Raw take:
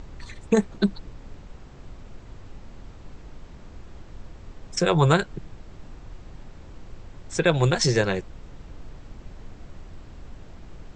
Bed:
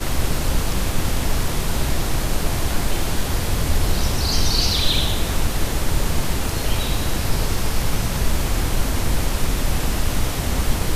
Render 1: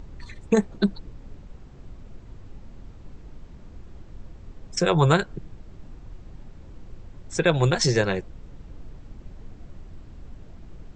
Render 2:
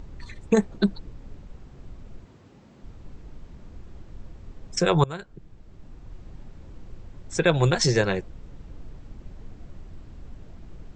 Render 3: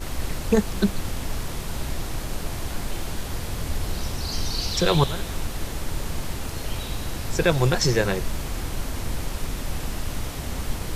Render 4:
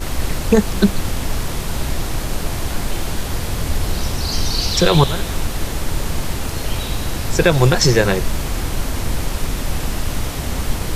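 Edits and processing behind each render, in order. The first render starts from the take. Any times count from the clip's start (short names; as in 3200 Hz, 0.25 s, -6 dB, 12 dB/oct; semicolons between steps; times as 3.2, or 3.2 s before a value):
denoiser 6 dB, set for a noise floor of -45 dBFS
2.25–2.83 HPF 150 Hz; 5.04–6.22 fade in, from -21.5 dB
add bed -8.5 dB
gain +7.5 dB; limiter -1 dBFS, peak gain reduction 3 dB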